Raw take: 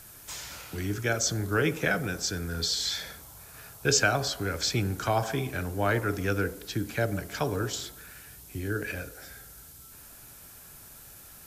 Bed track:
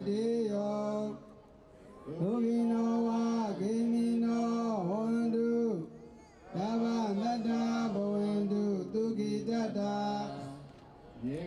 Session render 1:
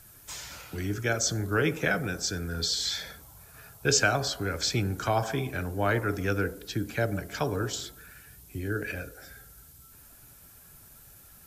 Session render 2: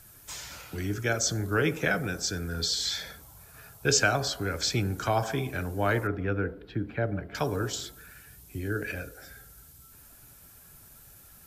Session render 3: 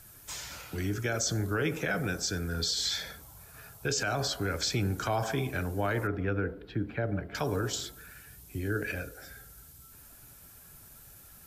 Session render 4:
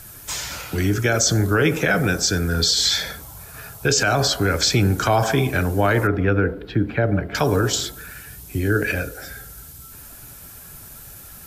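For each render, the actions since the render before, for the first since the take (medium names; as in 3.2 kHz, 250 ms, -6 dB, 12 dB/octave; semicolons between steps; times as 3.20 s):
noise reduction 6 dB, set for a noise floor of -50 dBFS
6.07–7.35 s: distance through air 460 m
peak limiter -20.5 dBFS, peak gain reduction 10.5 dB
trim +12 dB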